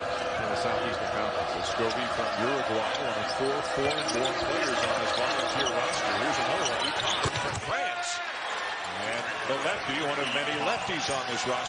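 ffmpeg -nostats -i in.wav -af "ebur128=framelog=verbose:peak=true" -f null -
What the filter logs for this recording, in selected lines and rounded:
Integrated loudness:
  I:         -28.3 LUFS
  Threshold: -38.2 LUFS
Loudness range:
  LRA:         2.6 LU
  Threshold: -48.1 LUFS
  LRA low:   -29.5 LUFS
  LRA high:  -26.9 LUFS
True peak:
  Peak:      -13.7 dBFS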